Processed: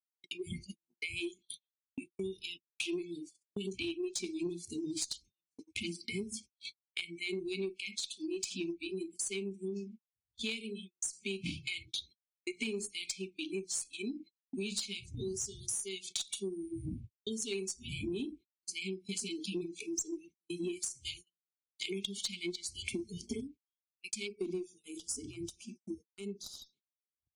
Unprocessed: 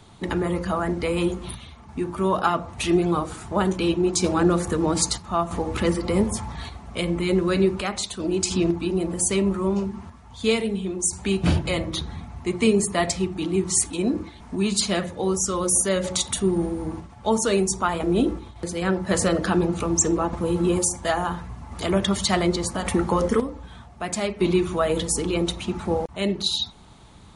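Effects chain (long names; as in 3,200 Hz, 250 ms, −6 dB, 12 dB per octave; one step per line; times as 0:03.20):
wind on the microphone 85 Hz −31 dBFS
meter weighting curve A
noise reduction from a noise print of the clip's start 25 dB
linear-phase brick-wall band-stop 430–2,100 Hz
harmonic generator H 2 −21 dB, 5 −9 dB, 6 −41 dB, 7 −12 dB, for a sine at −2.5 dBFS
high-shelf EQ 2,900 Hz −6 dB
noise gate −45 dBFS, range −49 dB
downward compressor 4 to 1, threshold −42 dBFS, peak gain reduction 19 dB
gain on a spectral selection 0:24.27–0:26.73, 1,500–4,600 Hz −16 dB
level +4.5 dB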